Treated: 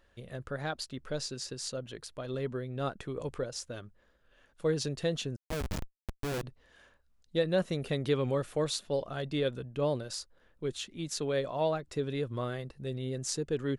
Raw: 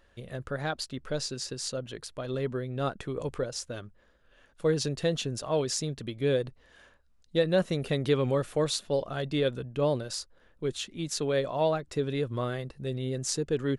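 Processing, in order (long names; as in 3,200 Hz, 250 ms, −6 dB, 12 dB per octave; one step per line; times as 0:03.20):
0:05.36–0:06.43: comparator with hysteresis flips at −24 dBFS
level −3.5 dB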